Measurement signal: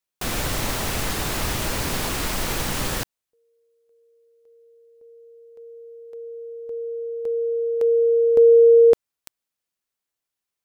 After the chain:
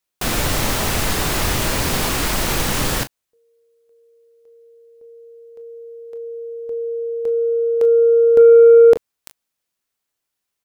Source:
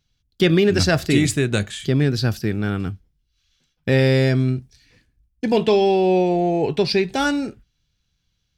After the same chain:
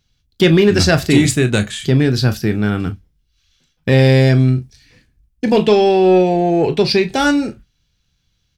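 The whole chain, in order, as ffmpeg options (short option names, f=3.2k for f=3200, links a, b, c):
-af "aecho=1:1:24|38:0.224|0.211,acontrast=33"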